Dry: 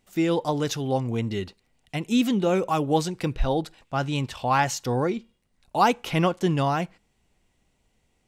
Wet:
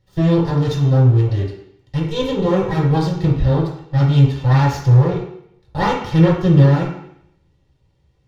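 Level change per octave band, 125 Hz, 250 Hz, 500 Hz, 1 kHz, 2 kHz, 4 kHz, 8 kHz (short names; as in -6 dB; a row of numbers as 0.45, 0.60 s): +16.5 dB, +7.5 dB, +5.0 dB, +0.5 dB, +2.5 dB, +2.0 dB, n/a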